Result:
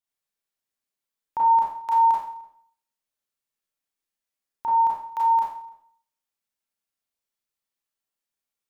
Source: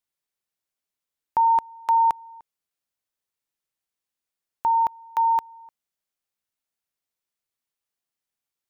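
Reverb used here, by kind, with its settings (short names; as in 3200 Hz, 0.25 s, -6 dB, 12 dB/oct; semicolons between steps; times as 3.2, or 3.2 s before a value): Schroeder reverb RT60 0.55 s, combs from 28 ms, DRR -5 dB; gain -7 dB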